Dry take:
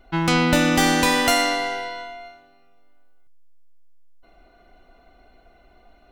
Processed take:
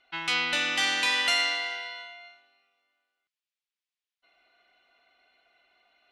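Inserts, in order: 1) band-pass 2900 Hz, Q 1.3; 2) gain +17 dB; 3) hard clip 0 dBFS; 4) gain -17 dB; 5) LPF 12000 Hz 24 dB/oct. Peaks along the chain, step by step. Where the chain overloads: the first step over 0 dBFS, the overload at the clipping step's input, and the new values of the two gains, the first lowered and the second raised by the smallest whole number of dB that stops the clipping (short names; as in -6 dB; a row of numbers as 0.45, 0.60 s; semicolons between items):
-11.0, +6.0, 0.0, -17.0, -15.5 dBFS; step 2, 6.0 dB; step 2 +11 dB, step 4 -11 dB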